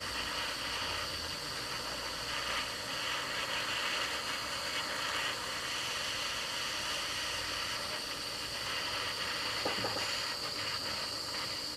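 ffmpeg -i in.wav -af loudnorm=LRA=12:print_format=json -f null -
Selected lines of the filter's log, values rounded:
"input_i" : "-34.5",
"input_tp" : "-20.5",
"input_lra" : "0.7",
"input_thresh" : "-44.5",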